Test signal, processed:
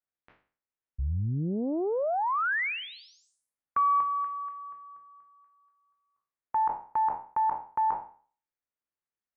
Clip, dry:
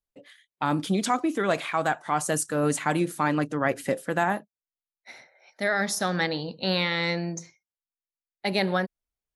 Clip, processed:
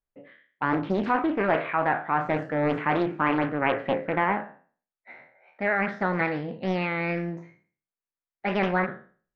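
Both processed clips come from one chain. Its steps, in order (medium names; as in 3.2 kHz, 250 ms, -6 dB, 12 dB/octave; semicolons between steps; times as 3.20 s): spectral sustain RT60 0.43 s; low-pass 2.2 kHz 24 dB/octave; loudspeaker Doppler distortion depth 0.72 ms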